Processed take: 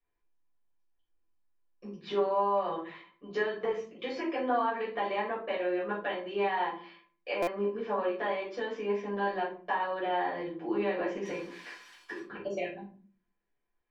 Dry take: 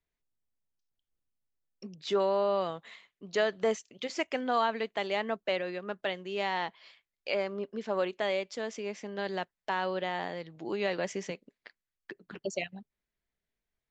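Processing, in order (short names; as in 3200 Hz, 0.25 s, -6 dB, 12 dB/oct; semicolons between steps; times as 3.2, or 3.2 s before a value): 11.25–12.2 switching spikes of -30 dBFS; resonator 340 Hz, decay 0.17 s, harmonics odd, mix 80%; compressor, threshold -43 dBFS, peak gain reduction 9 dB; LPF 2000 Hz 12 dB/oct; low shelf 180 Hz -11 dB; notch 660 Hz, Q 12; shoebox room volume 290 m³, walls furnished, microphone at 5.8 m; stuck buffer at 7.42, samples 256, times 8; gain +8.5 dB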